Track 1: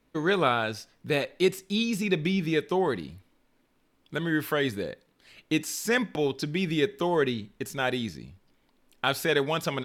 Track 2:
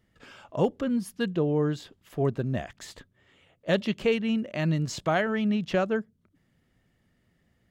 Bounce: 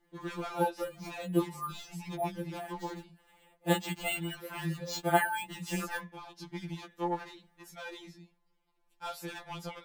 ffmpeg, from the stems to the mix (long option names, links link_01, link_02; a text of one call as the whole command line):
ffmpeg -i stem1.wav -i stem2.wav -filter_complex "[0:a]asoftclip=type=hard:threshold=-24.5dB,volume=-10.5dB,asplit=2[link_01][link_02];[1:a]aecho=1:1:3.4:0.47,acrusher=samples=4:mix=1:aa=0.000001,volume=-1dB[link_03];[link_02]apad=whole_len=339836[link_04];[link_03][link_04]sidechaincompress=threshold=-44dB:ratio=8:attack=42:release=164[link_05];[link_01][link_05]amix=inputs=2:normalize=0,equalizer=frequency=910:width_type=o:width=0.38:gain=12,afftfilt=real='re*2.83*eq(mod(b,8),0)':imag='im*2.83*eq(mod(b,8),0)':win_size=2048:overlap=0.75" out.wav